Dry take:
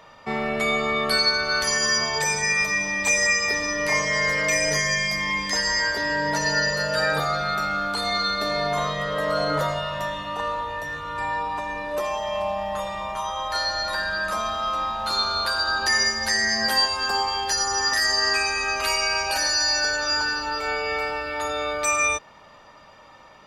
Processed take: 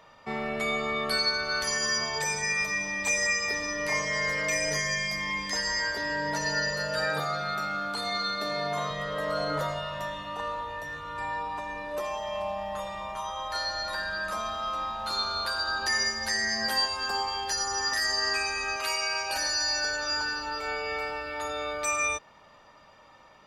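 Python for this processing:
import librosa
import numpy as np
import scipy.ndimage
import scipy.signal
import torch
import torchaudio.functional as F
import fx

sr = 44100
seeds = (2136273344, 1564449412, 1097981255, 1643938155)

y = fx.highpass(x, sr, hz=87.0, slope=24, at=(7.11, 8.91))
y = fx.low_shelf(y, sr, hz=180.0, db=-11.0, at=(18.76, 19.31))
y = y * librosa.db_to_amplitude(-6.0)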